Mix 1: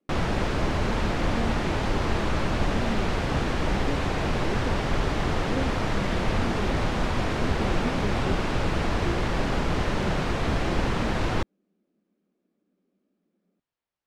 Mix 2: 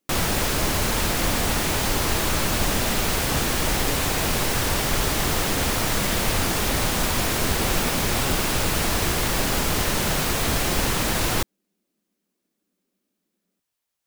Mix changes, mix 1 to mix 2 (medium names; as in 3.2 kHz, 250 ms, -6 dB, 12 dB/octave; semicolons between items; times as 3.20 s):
speech -6.5 dB; master: remove tape spacing loss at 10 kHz 26 dB